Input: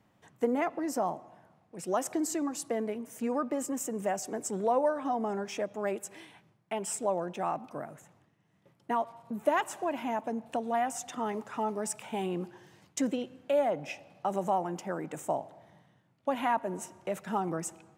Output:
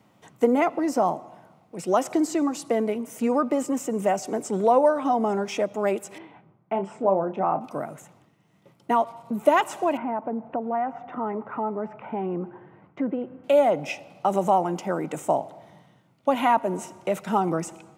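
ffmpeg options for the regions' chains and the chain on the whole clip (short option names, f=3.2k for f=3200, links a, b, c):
-filter_complex "[0:a]asettb=1/sr,asplit=3[a][b][c];[a]atrim=end=6.184[d];[b]atrim=start=6.18:end=7.61,asetpts=PTS-STARTPTS,afade=t=in:d=0.004:c=qsin,afade=t=out:st=1.426:d=0.004:c=qsin,lowpass=1.4k,asplit=2[e][f];[f]adelay=31,volume=-9dB[g];[e][g]amix=inputs=2:normalize=0,atrim=end_sample=63063[h];[c]atrim=start=7.606[i];[d][h]acrossfade=d=0.004:c1=hsin:c2=qsin[j];[j][i]acrossfade=d=0.004:c1=qsin:c2=hsin,asettb=1/sr,asplit=3[k][l][m];[k]atrim=end=9.974[n];[l]atrim=start=9.97:end=13.44,asetpts=PTS-STARTPTS,afade=t=in:d=0.004:c=qsin,afade=t=out:st=3.466:d=0.004:c=qsin,lowpass=f=1.8k:w=0.5412,lowpass=f=1.8k:w=1.3066,acompressor=threshold=-39dB:ratio=1.5:attack=3.2:release=140:knee=1:detection=peak[o];[m]atrim=start=13.436[p];[n][o]acrossfade=d=0.004:c1=hsin:c2=qsin[q];[q][p]acrossfade=d=0.004:c1=qsin:c2=hsin,highpass=110,bandreject=f=1.7k:w=7.2,acrossover=split=4800[r][s];[s]acompressor=threshold=-47dB:ratio=4:attack=1:release=60[t];[r][t]amix=inputs=2:normalize=0,volume=8.5dB"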